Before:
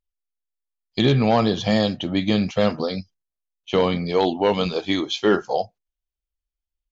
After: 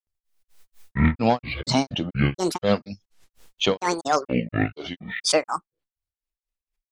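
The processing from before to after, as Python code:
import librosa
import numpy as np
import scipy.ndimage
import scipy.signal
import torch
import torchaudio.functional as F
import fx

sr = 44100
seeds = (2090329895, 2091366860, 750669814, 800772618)

y = fx.granulator(x, sr, seeds[0], grain_ms=204.0, per_s=4.2, spray_ms=100.0, spread_st=12)
y = fx.pre_swell(y, sr, db_per_s=72.0)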